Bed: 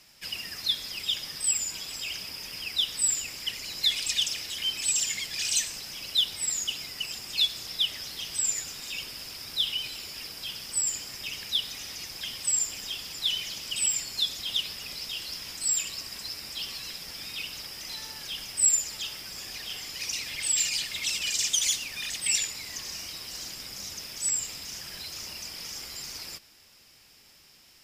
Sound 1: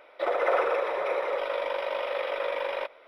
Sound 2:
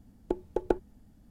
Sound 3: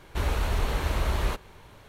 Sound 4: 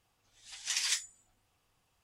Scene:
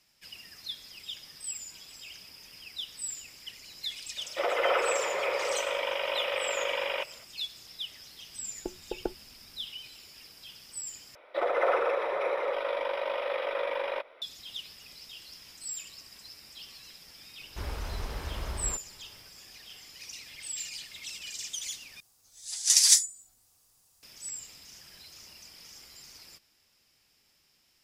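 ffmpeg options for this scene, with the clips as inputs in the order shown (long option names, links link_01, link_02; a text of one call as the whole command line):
ffmpeg -i bed.wav -i cue0.wav -i cue1.wav -i cue2.wav -i cue3.wav -filter_complex "[1:a]asplit=2[link_01][link_02];[0:a]volume=-11.5dB[link_03];[link_01]lowpass=frequency=3000:width_type=q:width=4.2[link_04];[4:a]aexciter=amount=6.2:drive=4.3:freq=4200[link_05];[link_03]asplit=3[link_06][link_07][link_08];[link_06]atrim=end=11.154[link_09];[link_02]atrim=end=3.07,asetpts=PTS-STARTPTS,volume=-1.5dB[link_10];[link_07]atrim=start=14.216:end=22.004[link_11];[link_05]atrim=end=2.03,asetpts=PTS-STARTPTS,volume=-1dB[link_12];[link_08]atrim=start=24.026[link_13];[link_04]atrim=end=3.07,asetpts=PTS-STARTPTS,volume=-3dB,afade=type=in:duration=0.004:curve=hsin,afade=type=out:start_time=3.066:duration=0.004:curve=hsin,adelay=183897S[link_14];[2:a]atrim=end=1.3,asetpts=PTS-STARTPTS,volume=-7dB,afade=type=in:duration=0.004:curve=hsin,afade=type=out:start_time=1.296:duration=0.004:curve=hsin,adelay=8350[link_15];[3:a]atrim=end=1.88,asetpts=PTS-STARTPTS,volume=-9.5dB,afade=type=in:duration=0.004:curve=hsin,afade=type=out:start_time=1.876:duration=0.004:curve=hsin,adelay=17410[link_16];[link_09][link_10]acrossfade=duration=0.004:curve1=hsin:curve2=hsin[link_17];[link_17][link_11]acrossfade=duration=0.004:curve1=hsin:curve2=hsin[link_18];[link_18][link_12]acrossfade=duration=0.004:curve1=hsin:curve2=hsin[link_19];[link_19][link_13]acrossfade=duration=0.004:curve1=hsin:curve2=hsin[link_20];[link_20][link_14][link_15][link_16]amix=inputs=4:normalize=0" out.wav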